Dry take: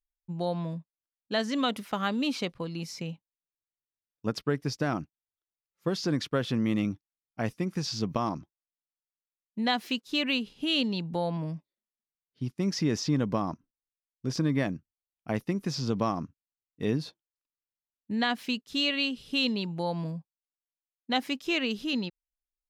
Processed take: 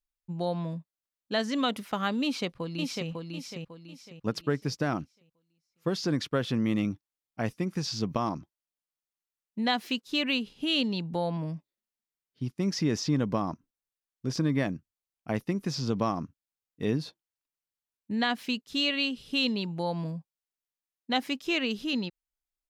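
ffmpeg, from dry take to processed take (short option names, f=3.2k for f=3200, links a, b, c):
-filter_complex "[0:a]asplit=2[a][b];[b]afade=t=in:st=2.23:d=0.01,afade=t=out:st=3.09:d=0.01,aecho=0:1:550|1100|1650|2200|2750:0.668344|0.23392|0.0818721|0.0286552|0.0100293[c];[a][c]amix=inputs=2:normalize=0"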